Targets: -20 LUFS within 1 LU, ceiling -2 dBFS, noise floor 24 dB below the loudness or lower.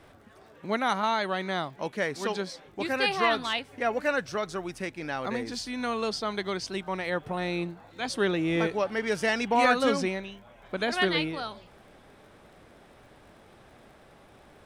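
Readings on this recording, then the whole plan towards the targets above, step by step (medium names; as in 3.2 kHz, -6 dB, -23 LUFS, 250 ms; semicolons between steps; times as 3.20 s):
tick rate 43 per s; loudness -29.0 LUFS; peak level -11.5 dBFS; loudness target -20.0 LUFS
-> de-click; trim +9 dB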